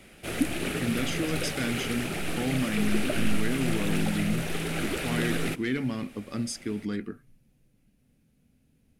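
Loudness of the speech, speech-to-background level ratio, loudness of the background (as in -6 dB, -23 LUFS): -32.0 LUFS, -1.0 dB, -31.0 LUFS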